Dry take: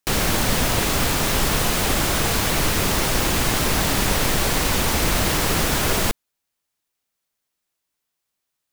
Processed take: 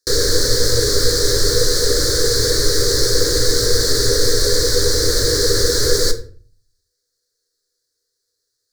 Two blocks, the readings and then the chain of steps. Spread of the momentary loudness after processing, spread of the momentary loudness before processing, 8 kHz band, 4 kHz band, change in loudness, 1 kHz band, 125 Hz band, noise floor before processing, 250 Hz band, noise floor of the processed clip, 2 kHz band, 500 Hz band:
0 LU, 0 LU, +5.5 dB, +7.5 dB, +4.0 dB, -9.5 dB, +1.0 dB, -80 dBFS, -2.0 dB, -75 dBFS, -2.5 dB, +9.0 dB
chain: FFT filter 120 Hz 0 dB, 170 Hz -20 dB, 490 Hz +11 dB, 720 Hz -24 dB, 1.7 kHz +1 dB, 2.7 kHz -29 dB, 4.3 kHz +11 dB, 15 kHz -7 dB; in parallel at -2.5 dB: peak limiter -16.5 dBFS, peak gain reduction 10.5 dB; on the sum: simulated room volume 36 m³, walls mixed, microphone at 0.31 m; trim -1.5 dB

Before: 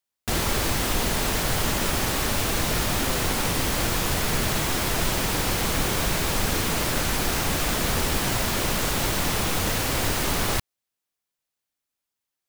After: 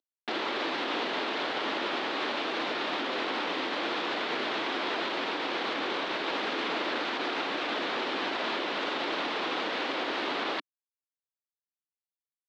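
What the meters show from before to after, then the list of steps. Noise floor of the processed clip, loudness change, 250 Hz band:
under -85 dBFS, -7.0 dB, -7.0 dB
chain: CVSD coder 64 kbps; elliptic band-pass 290–3800 Hz, stop band 60 dB; peak limiter -22.5 dBFS, peak gain reduction 5.5 dB

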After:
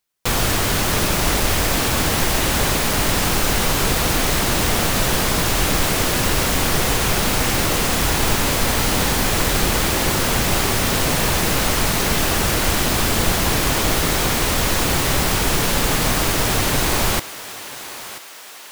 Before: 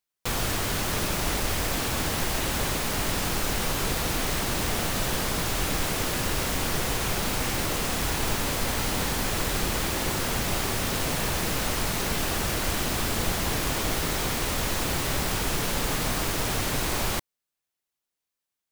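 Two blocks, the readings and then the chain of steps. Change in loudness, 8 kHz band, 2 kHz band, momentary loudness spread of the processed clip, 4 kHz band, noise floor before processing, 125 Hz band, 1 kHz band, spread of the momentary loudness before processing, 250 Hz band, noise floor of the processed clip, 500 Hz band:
+8.5 dB, +9.0 dB, +9.0 dB, 1 LU, +9.0 dB, under -85 dBFS, +8.5 dB, +8.5 dB, 0 LU, +8.5 dB, -33 dBFS, +8.5 dB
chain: thinning echo 985 ms, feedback 56%, high-pass 570 Hz, level -13 dB; trim +8.5 dB

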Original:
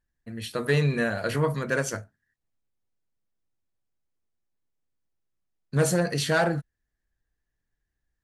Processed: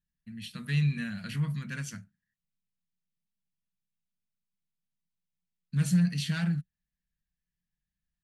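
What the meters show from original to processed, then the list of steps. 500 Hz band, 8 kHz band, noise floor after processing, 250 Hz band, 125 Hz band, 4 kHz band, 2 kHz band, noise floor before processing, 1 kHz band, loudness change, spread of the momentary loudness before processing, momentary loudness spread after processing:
-27.0 dB, -9.0 dB, under -85 dBFS, -1.0 dB, -1.0 dB, -5.5 dB, -10.5 dB, -83 dBFS, -18.5 dB, -4.5 dB, 10 LU, 16 LU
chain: FFT filter 120 Hz 0 dB, 180 Hz +14 dB, 360 Hz -16 dB, 530 Hz -21 dB, 2.7 kHz +5 dB, 6.8 kHz -1 dB; trim -8.5 dB

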